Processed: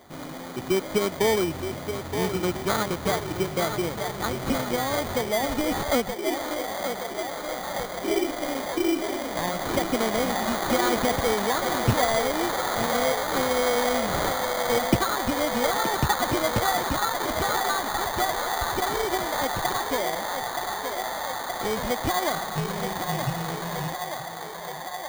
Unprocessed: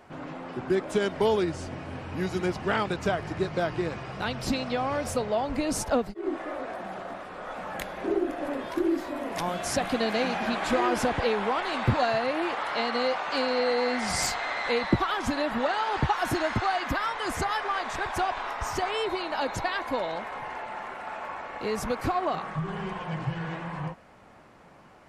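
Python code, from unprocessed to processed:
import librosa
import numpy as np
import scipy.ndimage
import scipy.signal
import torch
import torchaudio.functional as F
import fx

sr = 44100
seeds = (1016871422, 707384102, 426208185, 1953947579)

p1 = x + fx.echo_banded(x, sr, ms=924, feedback_pct=82, hz=780.0, wet_db=-5.5, dry=0)
p2 = fx.sample_hold(p1, sr, seeds[0], rate_hz=2700.0, jitter_pct=0)
p3 = fx.notch(p2, sr, hz=1600.0, q=20.0)
y = p3 * librosa.db_to_amplitude(1.5)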